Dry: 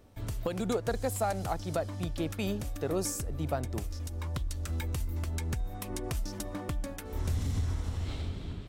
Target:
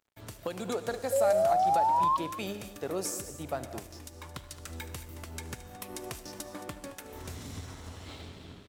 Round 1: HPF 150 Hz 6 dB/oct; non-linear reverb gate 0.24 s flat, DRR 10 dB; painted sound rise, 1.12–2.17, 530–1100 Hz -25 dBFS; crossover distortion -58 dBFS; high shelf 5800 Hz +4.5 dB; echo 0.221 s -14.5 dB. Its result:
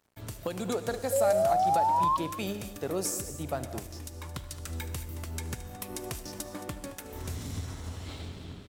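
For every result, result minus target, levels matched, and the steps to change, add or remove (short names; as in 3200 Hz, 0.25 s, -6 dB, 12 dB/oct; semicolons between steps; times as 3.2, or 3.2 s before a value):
125 Hz band +6.0 dB; 8000 Hz band +3.5 dB
change: HPF 330 Hz 6 dB/oct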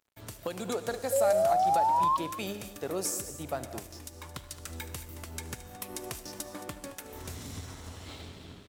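8000 Hz band +3.0 dB
remove: high shelf 5800 Hz +4.5 dB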